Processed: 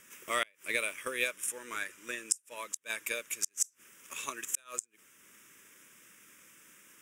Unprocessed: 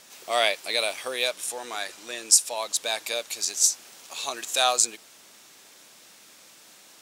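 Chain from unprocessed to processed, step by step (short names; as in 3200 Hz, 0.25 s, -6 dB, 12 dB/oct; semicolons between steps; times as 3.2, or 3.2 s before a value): transient shaper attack +6 dB, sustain -3 dB; fixed phaser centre 1800 Hz, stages 4; flipped gate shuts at -12 dBFS, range -32 dB; gain -2.5 dB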